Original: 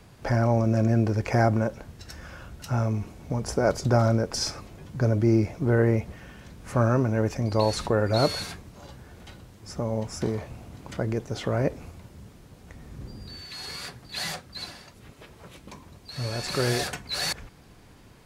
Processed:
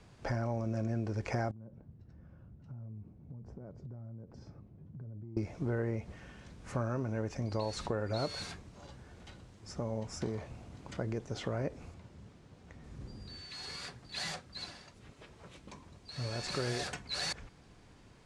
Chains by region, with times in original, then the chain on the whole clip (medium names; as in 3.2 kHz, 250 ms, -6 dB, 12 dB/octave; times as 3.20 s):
1.51–5.37 s: band-pass filter 140 Hz, Q 1.1 + compression 10:1, threshold -36 dBFS
11.94–12.84 s: high-pass 56 Hz + treble shelf 7.5 kHz -8.5 dB
whole clip: low-pass 8.9 kHz 24 dB/octave; compression 3:1, threshold -25 dBFS; trim -6.5 dB